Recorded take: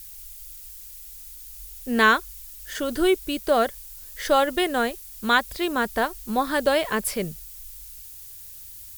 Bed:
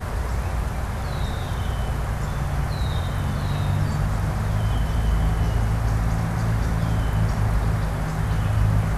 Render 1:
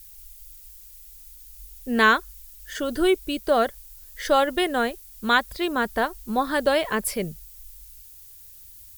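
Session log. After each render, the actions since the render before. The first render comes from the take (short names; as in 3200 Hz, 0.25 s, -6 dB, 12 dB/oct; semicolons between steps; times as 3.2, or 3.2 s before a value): denoiser 6 dB, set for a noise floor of -42 dBFS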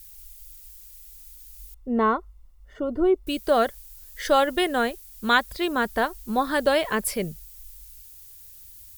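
1.74–3.27 polynomial smoothing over 65 samples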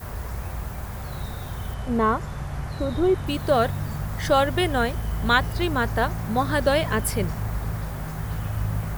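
add bed -6.5 dB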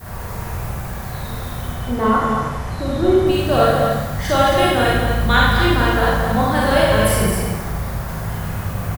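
on a send: echo 0.222 s -5.5 dB; on the sum: Schroeder reverb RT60 0.98 s, combs from 33 ms, DRR -5 dB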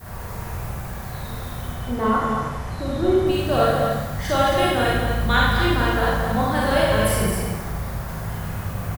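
gain -4 dB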